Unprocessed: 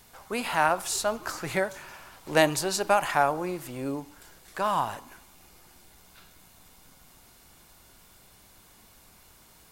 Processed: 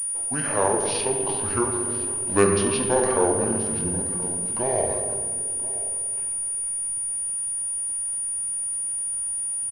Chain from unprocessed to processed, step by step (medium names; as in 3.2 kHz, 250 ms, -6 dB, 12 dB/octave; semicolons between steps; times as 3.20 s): delay 1027 ms -17.5 dB; reverberation RT60 2.5 s, pre-delay 5 ms, DRR 0.5 dB; pitch shift -8 st; class-D stage that switches slowly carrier 9.5 kHz